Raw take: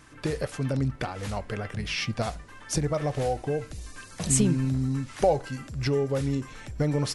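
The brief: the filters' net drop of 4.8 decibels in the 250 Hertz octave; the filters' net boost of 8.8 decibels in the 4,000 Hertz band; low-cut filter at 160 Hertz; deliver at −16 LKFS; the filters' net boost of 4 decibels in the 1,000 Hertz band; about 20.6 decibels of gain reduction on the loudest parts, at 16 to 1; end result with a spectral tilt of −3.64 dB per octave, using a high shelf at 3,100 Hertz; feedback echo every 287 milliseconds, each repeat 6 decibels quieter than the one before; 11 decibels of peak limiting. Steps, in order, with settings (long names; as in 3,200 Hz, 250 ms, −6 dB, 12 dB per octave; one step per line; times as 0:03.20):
high-pass filter 160 Hz
parametric band 250 Hz −5 dB
parametric band 1,000 Hz +5.5 dB
high-shelf EQ 3,100 Hz +6 dB
parametric band 4,000 Hz +6.5 dB
downward compressor 16 to 1, threshold −34 dBFS
brickwall limiter −28.5 dBFS
repeating echo 287 ms, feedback 50%, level −6 dB
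level +22.5 dB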